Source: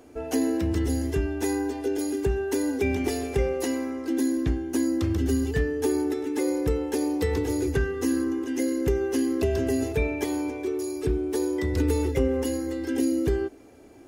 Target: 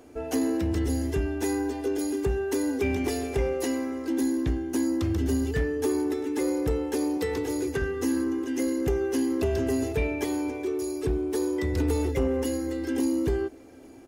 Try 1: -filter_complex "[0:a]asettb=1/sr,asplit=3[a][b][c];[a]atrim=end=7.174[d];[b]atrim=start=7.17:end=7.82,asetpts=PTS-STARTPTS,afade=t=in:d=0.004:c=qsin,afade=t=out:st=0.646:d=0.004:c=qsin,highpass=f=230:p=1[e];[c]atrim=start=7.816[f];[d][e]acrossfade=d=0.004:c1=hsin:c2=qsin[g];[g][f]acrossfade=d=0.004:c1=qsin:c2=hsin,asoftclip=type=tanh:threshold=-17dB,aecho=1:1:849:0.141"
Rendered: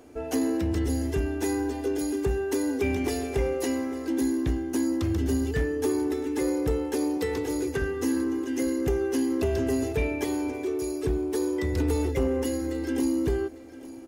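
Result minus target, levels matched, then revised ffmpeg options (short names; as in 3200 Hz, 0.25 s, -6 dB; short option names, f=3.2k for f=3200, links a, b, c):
echo-to-direct +9.5 dB
-filter_complex "[0:a]asettb=1/sr,asplit=3[a][b][c];[a]atrim=end=7.174[d];[b]atrim=start=7.17:end=7.82,asetpts=PTS-STARTPTS,afade=t=in:d=0.004:c=qsin,afade=t=out:st=0.646:d=0.004:c=qsin,highpass=f=230:p=1[e];[c]atrim=start=7.816[f];[d][e]acrossfade=d=0.004:c1=hsin:c2=qsin[g];[g][f]acrossfade=d=0.004:c1=qsin:c2=hsin,asoftclip=type=tanh:threshold=-17dB,aecho=1:1:849:0.0473"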